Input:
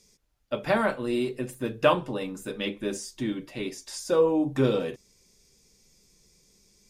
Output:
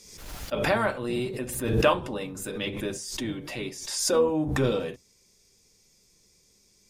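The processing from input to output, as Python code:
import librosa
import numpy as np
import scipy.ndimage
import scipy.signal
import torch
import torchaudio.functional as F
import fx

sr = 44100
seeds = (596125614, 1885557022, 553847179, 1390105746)

y = fx.octave_divider(x, sr, octaves=1, level_db=-3.0)
y = fx.low_shelf(y, sr, hz=270.0, db=-6.5)
y = fx.pre_swell(y, sr, db_per_s=52.0)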